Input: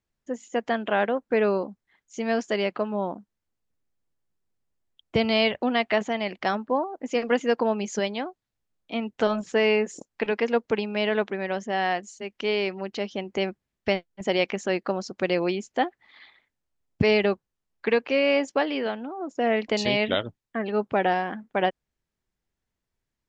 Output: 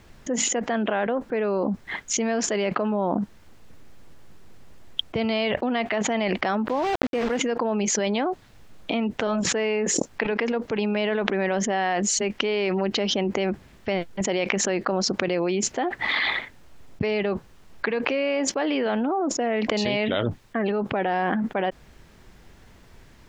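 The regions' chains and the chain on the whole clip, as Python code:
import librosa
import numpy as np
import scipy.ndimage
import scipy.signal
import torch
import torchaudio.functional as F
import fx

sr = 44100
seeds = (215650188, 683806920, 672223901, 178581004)

y = fx.chain(x, sr, fx.high_shelf(hz=6300.0, db=-8.5),
    fx.quant_dither(seeds[0], bits=6, dither='none'),
    fx.resample_linear(factor=4), at=(6.68, 7.38))
y = fx.high_shelf(y, sr, hz=5700.0, db=-11.0)
y = fx.env_flatten(y, sr, amount_pct=100)
y = y * 10.0 ** (-6.0 / 20.0)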